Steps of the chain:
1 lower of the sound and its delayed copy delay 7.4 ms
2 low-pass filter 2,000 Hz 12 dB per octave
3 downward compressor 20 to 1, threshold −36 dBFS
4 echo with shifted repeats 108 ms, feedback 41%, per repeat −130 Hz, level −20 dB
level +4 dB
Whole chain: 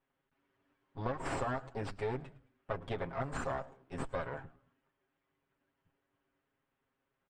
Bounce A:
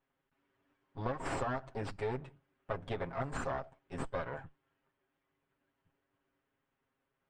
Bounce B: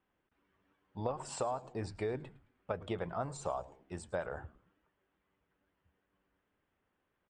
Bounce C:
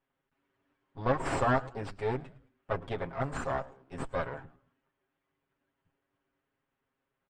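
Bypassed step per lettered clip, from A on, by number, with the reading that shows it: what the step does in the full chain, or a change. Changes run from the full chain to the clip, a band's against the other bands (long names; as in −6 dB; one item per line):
4, echo-to-direct ratio −19.0 dB to none audible
1, 8 kHz band +6.5 dB
3, average gain reduction 3.0 dB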